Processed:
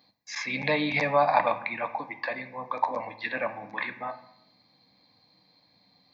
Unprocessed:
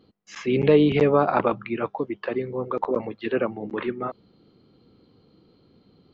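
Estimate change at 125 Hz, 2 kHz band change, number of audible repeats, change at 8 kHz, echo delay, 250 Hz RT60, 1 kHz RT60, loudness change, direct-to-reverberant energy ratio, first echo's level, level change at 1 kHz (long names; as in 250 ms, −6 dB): −11.5 dB, +4.5 dB, no echo audible, can't be measured, no echo audible, 1.2 s, 0.75 s, −5.0 dB, 8.0 dB, no echo audible, +1.0 dB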